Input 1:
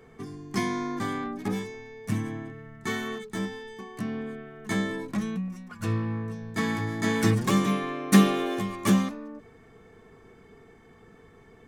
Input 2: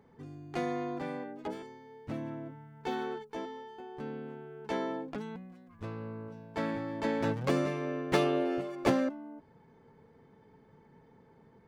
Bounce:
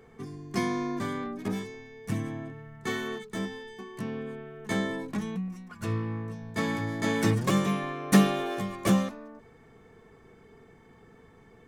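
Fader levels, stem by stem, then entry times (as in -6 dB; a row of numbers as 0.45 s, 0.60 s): -2.5 dB, -3.5 dB; 0.00 s, 0.00 s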